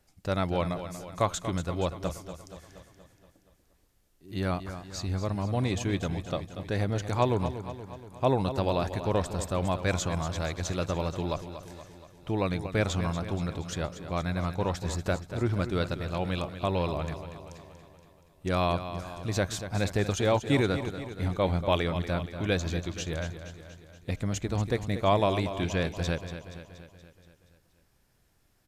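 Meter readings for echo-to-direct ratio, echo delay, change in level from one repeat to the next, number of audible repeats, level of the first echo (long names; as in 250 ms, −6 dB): −9.0 dB, 237 ms, −4.5 dB, 6, −11.0 dB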